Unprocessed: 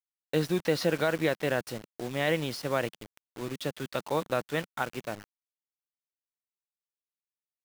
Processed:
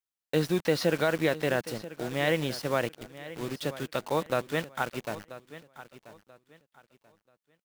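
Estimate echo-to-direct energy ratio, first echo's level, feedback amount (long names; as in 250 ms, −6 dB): −15.5 dB, −16.0 dB, 27%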